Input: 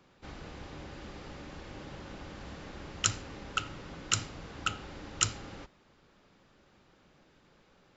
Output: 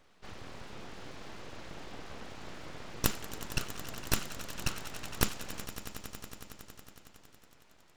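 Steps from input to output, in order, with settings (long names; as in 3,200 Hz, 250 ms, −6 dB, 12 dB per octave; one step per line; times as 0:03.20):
echo that builds up and dies away 92 ms, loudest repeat 5, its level −16 dB
full-wave rectification
level +1 dB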